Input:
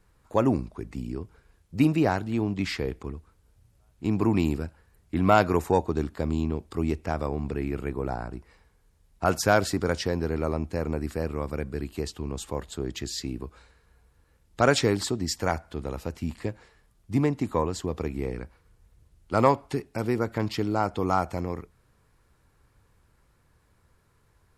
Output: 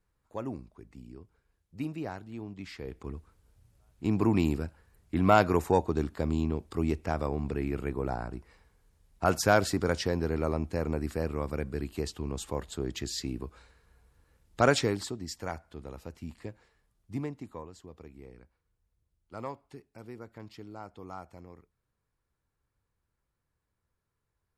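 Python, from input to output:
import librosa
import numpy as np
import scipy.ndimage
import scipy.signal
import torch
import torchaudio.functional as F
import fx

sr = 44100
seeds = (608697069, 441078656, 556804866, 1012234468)

y = fx.gain(x, sr, db=fx.line((2.72, -14.0), (3.15, -2.0), (14.66, -2.0), (15.2, -10.0), (17.13, -10.0), (17.68, -18.5)))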